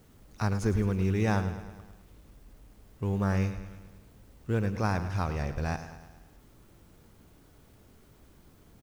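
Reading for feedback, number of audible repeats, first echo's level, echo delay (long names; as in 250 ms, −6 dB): 58%, 5, −12.0 dB, 106 ms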